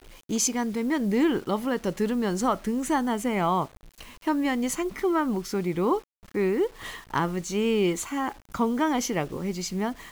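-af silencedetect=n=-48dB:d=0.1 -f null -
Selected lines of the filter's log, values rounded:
silence_start: 6.04
silence_end: 6.23 | silence_duration: 0.19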